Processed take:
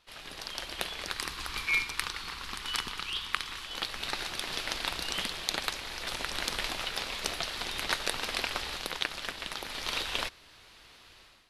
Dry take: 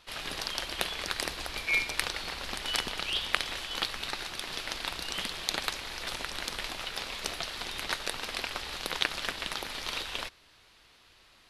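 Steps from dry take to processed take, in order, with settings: AGC gain up to 13 dB; 1.17–3.66 EQ curve 150 Hz 0 dB, 420 Hz -4 dB, 620 Hz -12 dB, 1100 Hz +5 dB, 1700 Hz 0 dB; gain -8 dB

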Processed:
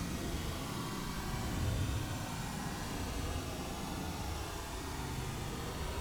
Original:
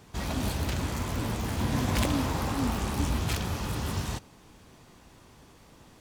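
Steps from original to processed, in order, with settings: diffused feedback echo 0.49 s, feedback 52%, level -14 dB; Paulstretch 21×, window 0.05 s, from 4.9; gain +10 dB

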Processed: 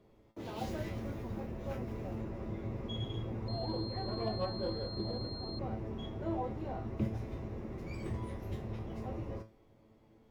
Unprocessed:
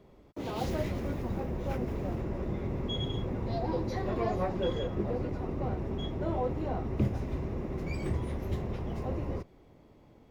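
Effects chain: resonator 110 Hz, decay 0.3 s, harmonics all, mix 80%; 3.48–5.59 pulse-width modulation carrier 4200 Hz; gain +2 dB

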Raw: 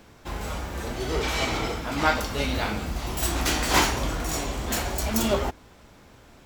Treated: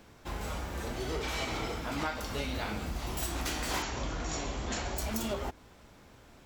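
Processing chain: 3.82–4.97 brick-wall FIR low-pass 7700 Hz; compressor 6:1, threshold -26 dBFS, peak gain reduction 10.5 dB; gain -4.5 dB

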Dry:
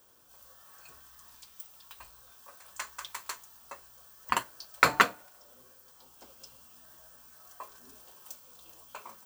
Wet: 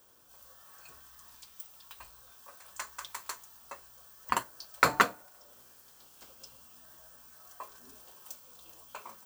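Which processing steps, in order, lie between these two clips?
5.52–6.29 spectral limiter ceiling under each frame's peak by 13 dB; dynamic EQ 2700 Hz, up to -5 dB, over -46 dBFS, Q 1

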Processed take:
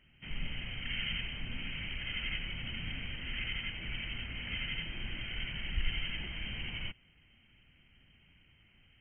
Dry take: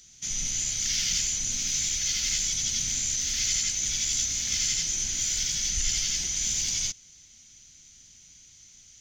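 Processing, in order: brick-wall FIR low-pass 3200 Hz

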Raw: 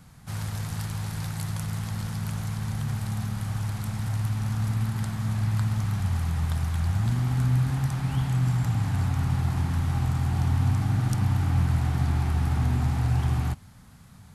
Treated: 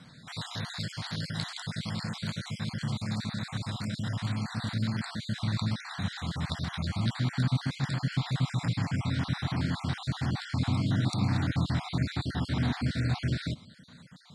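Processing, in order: random spectral dropouts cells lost 42%; speaker cabinet 200–7100 Hz, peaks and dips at 400 Hz -6 dB, 820 Hz -9 dB, 1200 Hz -5 dB, 2700 Hz -6 dB, 3900 Hz +9 dB, 6200 Hz -10 dB; gain +6 dB

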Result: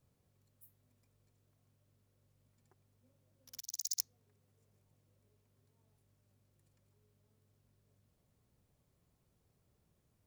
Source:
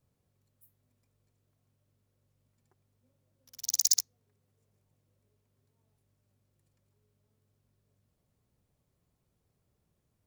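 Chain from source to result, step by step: 3.6–4 passive tone stack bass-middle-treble 6-0-2; gain +1 dB

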